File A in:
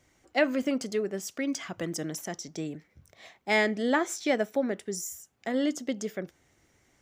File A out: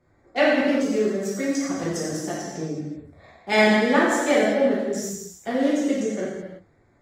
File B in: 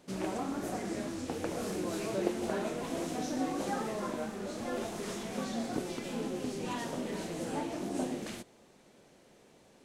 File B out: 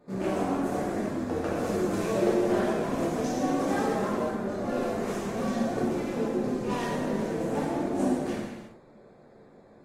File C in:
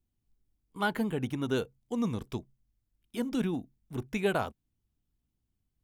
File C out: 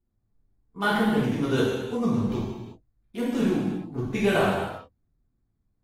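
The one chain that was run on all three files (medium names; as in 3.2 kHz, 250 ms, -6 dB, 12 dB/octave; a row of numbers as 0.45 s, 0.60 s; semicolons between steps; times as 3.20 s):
local Wiener filter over 15 samples; gated-style reverb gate 410 ms falling, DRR -7.5 dB; AAC 48 kbps 48 kHz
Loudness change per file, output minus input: +7.5 LU, +7.5 LU, +7.5 LU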